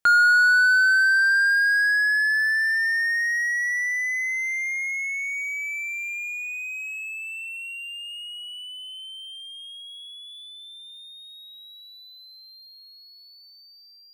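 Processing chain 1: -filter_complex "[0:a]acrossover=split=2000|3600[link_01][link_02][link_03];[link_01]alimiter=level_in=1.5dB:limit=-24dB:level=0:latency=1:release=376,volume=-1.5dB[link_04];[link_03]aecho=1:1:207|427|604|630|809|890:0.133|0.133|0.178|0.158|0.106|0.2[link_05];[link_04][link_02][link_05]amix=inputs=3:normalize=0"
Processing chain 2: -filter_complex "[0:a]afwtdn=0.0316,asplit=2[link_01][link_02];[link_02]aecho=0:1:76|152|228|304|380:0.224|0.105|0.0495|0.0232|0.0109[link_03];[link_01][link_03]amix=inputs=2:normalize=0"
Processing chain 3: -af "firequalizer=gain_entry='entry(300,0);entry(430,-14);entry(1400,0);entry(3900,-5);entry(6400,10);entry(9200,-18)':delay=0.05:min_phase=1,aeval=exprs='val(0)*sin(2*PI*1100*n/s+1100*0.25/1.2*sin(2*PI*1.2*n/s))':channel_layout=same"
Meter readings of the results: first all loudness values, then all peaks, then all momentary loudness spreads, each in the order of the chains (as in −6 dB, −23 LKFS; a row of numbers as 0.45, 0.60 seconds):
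−24.0, −20.0, −24.0 LKFS; −18.0, −11.0, −12.5 dBFS; 20, 16, 22 LU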